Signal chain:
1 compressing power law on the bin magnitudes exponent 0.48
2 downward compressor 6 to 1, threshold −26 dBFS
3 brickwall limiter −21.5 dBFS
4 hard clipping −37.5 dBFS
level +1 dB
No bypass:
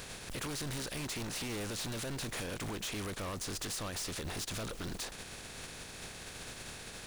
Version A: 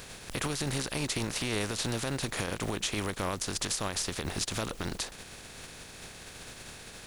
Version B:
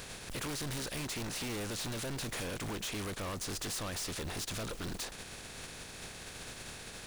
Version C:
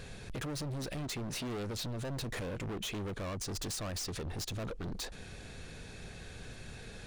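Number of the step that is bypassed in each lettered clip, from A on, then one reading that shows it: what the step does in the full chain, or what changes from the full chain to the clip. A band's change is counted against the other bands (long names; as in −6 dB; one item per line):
4, distortion level −5 dB
3, average gain reduction 2.0 dB
1, 125 Hz band +5.0 dB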